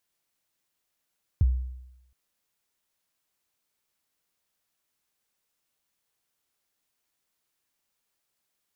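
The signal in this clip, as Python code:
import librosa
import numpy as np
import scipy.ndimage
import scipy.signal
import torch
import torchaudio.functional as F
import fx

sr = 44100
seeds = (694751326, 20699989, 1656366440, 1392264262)

y = fx.drum_kick(sr, seeds[0], length_s=0.72, level_db=-15, start_hz=120.0, end_hz=63.0, sweep_ms=27.0, decay_s=0.88, click=False)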